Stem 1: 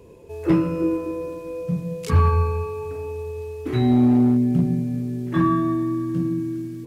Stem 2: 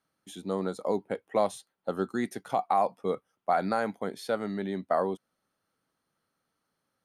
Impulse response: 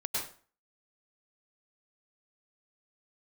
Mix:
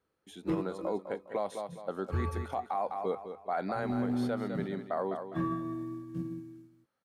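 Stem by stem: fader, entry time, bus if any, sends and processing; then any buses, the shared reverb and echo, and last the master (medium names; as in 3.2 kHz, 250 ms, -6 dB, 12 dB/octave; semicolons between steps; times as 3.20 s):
+1.5 dB, 0.00 s, no send, no echo send, upward expansion 2.5:1, over -37 dBFS; auto duck -11 dB, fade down 1.00 s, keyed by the second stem
-2.5 dB, 0.00 s, no send, echo send -10.5 dB, tone controls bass -5 dB, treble -7 dB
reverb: none
echo: feedback delay 204 ms, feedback 35%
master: peak limiter -23 dBFS, peak gain reduction 7 dB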